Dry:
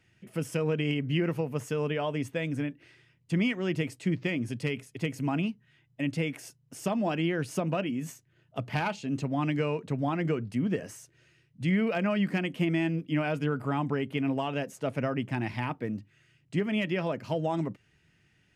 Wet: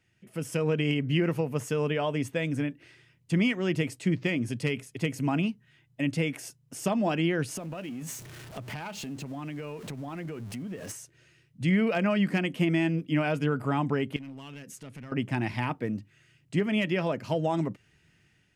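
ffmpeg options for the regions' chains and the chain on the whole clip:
-filter_complex "[0:a]asettb=1/sr,asplit=3[a][b][c];[a]atrim=end=7.574[d];[b]atrim=start=7.57:end=10.92,asetpts=PTS-STARTPTS,afade=t=in:d=0.004:c=qsin,afade=t=out:st=3.346:d=0.004:c=qsin,aeval=exprs='val(0)+0.5*0.00794*sgn(val(0))':c=same,acompressor=threshold=-37dB:ratio=5:attack=3.2:release=140:knee=1:detection=peak[e];[c]atrim=start=10.916[f];[d][e]acrossfade=d=0.004:c1=hsin:c2=qsin[g];[g][f]acrossfade=d=0.004:c1=qsin:c2=hsin,asettb=1/sr,asplit=3[h][i][j];[h]atrim=end=14.164[k];[i]atrim=start=14.16:end=15.12,asetpts=PTS-STARTPTS,afade=t=in:d=0.004:c=qsin,afade=t=out:st=0.956:d=0.004:c=qsin,equalizer=f=690:w=0.99:g=-14.5,acompressor=threshold=-44dB:ratio=3:attack=3.2:release=140:knee=1:detection=peak,aeval=exprs='clip(val(0),-1,0.01)':c=same[l];[j]atrim=start=15.116[m];[k][l]acrossfade=d=0.004:c1=hsin:c2=qsin[n];[n][m]acrossfade=d=0.004:c1=qsin:c2=hsin,equalizer=f=9.2k:w=0.66:g=3,dynaudnorm=f=180:g=5:m=7dB,volume=-5dB"

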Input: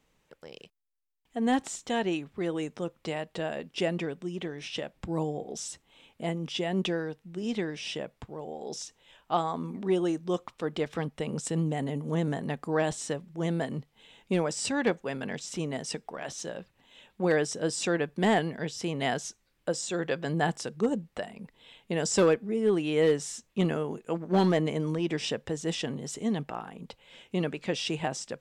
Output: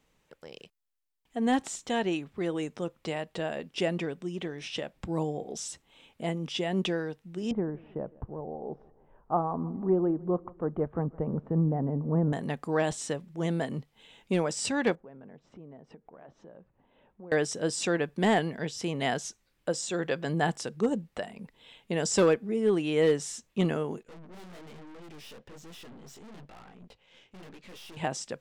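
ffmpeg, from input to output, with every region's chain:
-filter_complex "[0:a]asettb=1/sr,asplit=3[a][b][c];[a]atrim=end=7.514[d];[b]atrim=start=7.51:end=12.33,asetpts=PTS-STARTPTS,afade=t=in:d=0.004:c=qsin,afade=t=out:st=4.816:d=0.004:c=qsin,lowpass=f=1.2k:w=0.5412,lowpass=f=1.2k:w=1.3066,lowshelf=f=99:g=12,aecho=1:1:160|320|480|640:0.075|0.0397|0.0211|0.0112,atrim=end_sample=212562[e];[c]atrim=start=12.326[f];[d][e]acrossfade=d=0.004:c1=hsin:c2=qsin[g];[g][f]acrossfade=d=0.004:c1=qsin:c2=hsin,asettb=1/sr,asplit=3[h][i][j];[h]atrim=end=14.954[k];[i]atrim=start=14.95:end=17.32,asetpts=PTS-STARTPTS,afade=t=in:d=0.004:c=qsin,afade=t=out:st=2.366:d=0.004:c=qsin,lowpass=1k,acompressor=threshold=-52dB:ratio=2.5:attack=3.2:release=140:knee=1:detection=peak[l];[j]atrim=start=17.316[m];[k][l]acrossfade=d=0.004:c1=hsin:c2=qsin[n];[n][m]acrossfade=d=0.004:c1=qsin:c2=hsin,asettb=1/sr,asplit=3[o][p][q];[o]atrim=end=24.034[r];[p]atrim=start=24.03:end=27.97,asetpts=PTS-STARTPTS,afade=t=in:d=0.004:c=qsin,afade=t=out:st=3.936:d=0.004:c=qsin,lowpass=5.9k,flanger=delay=16:depth=7.4:speed=1.1,aeval=exprs='(tanh(224*val(0)+0.65)-tanh(0.65))/224':c=same[s];[q]atrim=start=27.966[t];[r][s]acrossfade=d=0.004:c1=hsin:c2=qsin[u];[u][t]acrossfade=d=0.004:c1=qsin:c2=hsin"

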